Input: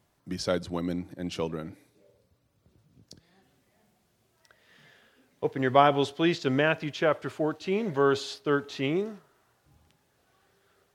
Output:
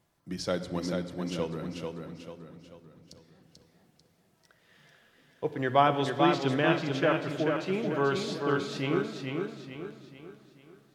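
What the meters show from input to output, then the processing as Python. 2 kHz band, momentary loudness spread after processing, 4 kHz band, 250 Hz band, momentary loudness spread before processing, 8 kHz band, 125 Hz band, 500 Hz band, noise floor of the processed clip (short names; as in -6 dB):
-1.0 dB, 18 LU, -1.0 dB, -0.5 dB, 11 LU, -1.0 dB, +1.0 dB, -2.0 dB, -68 dBFS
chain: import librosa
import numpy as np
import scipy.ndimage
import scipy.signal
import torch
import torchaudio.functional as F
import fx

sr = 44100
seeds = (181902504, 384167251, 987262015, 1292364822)

y = fx.room_shoebox(x, sr, seeds[0], volume_m3=3900.0, walls='mixed', distance_m=0.73)
y = fx.echo_warbled(y, sr, ms=440, feedback_pct=43, rate_hz=2.8, cents=51, wet_db=-4.5)
y = y * 10.0 ** (-3.0 / 20.0)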